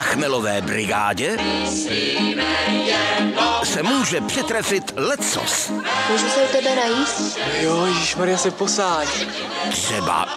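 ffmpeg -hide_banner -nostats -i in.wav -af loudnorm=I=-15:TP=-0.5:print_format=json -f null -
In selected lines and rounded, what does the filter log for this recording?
"input_i" : "-19.6",
"input_tp" : "-5.5",
"input_lra" : "1.2",
"input_thresh" : "-29.6",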